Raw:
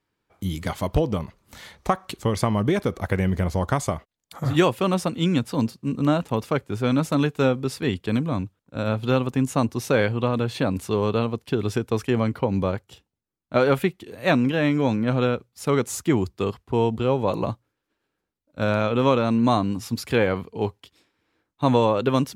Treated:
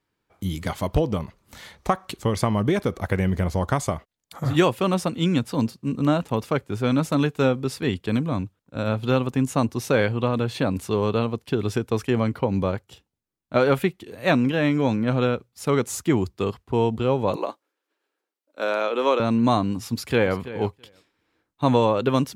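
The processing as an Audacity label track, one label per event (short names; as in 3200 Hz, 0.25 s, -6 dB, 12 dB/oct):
17.360000	19.200000	HPF 330 Hz 24 dB/oct
19.910000	20.350000	echo throw 0.33 s, feedback 10%, level -15.5 dB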